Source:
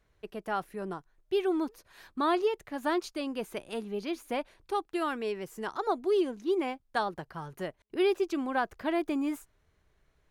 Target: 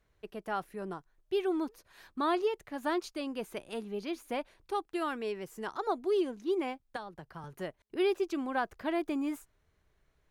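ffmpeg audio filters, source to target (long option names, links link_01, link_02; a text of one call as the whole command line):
ffmpeg -i in.wav -filter_complex "[0:a]asettb=1/sr,asplit=3[link_01][link_02][link_03];[link_01]atrim=end=6.964[link_04];[link_02]atrim=start=6.96:end=7.44,asetpts=PTS-STARTPTS,afade=type=in:duration=0.004:curve=qsin,afade=type=out:start_time=0.476:duration=0.004:curve=qsin,acrossover=split=140[link_05][link_06];[link_06]acompressor=threshold=-40dB:ratio=3[link_07];[link_05][link_07]amix=inputs=2:normalize=0[link_08];[link_03]atrim=start=7.436[link_09];[link_04][link_08]acrossfade=duration=0.004:curve1=hsin:curve2=qsin[link_10];[link_10][link_09]acrossfade=duration=0.004:curve1=qsin:curve2=hsin,volume=-2.5dB" out.wav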